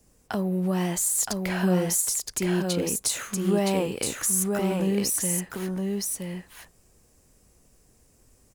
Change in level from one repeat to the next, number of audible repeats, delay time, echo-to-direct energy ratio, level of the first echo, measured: no steady repeat, 1, 0.968 s, -3.5 dB, -3.5 dB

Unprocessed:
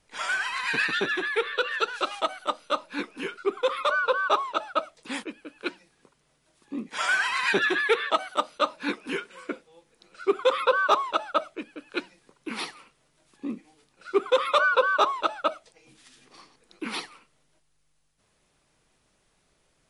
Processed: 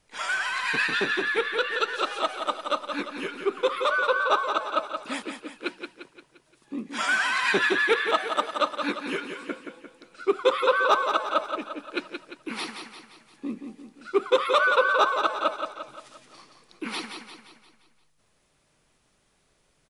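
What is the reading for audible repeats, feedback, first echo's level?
5, 49%, -7.0 dB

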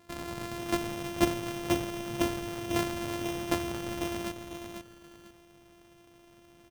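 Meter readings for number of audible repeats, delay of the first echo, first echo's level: 2, 0.496 s, -7.0 dB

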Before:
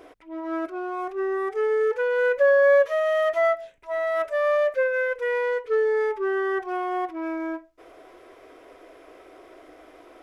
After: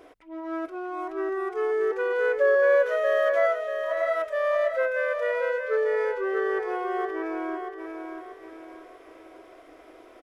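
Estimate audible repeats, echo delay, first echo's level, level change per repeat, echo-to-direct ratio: 4, 0.635 s, -6.0 dB, -8.0 dB, -5.0 dB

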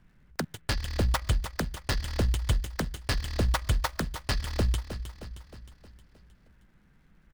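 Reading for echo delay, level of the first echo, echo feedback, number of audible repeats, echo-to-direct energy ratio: 0.312 s, -11.0 dB, 54%, 5, -9.5 dB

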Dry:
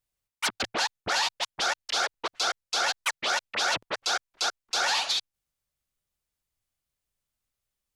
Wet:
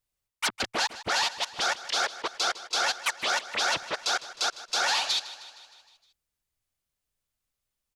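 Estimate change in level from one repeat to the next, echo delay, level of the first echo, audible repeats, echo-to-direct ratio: -4.5 dB, 0.155 s, -16.0 dB, 5, -14.0 dB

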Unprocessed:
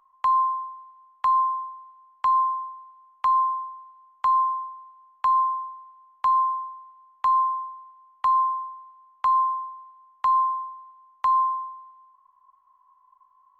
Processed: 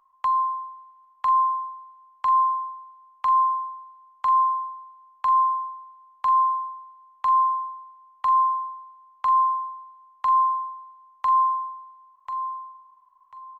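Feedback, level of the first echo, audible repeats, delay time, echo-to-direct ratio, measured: 23%, -9.0 dB, 3, 1.042 s, -9.0 dB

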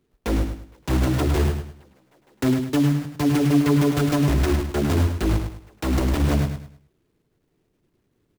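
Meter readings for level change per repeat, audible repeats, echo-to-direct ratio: -10.0 dB, 3, -6.5 dB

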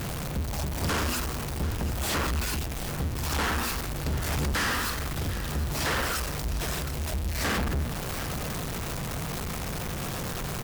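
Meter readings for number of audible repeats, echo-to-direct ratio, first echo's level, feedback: 1, -13.5 dB, -13.5 dB, no steady repeat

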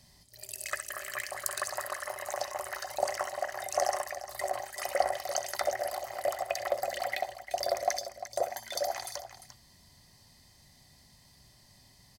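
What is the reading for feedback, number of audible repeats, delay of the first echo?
no steady repeat, 2, 65 ms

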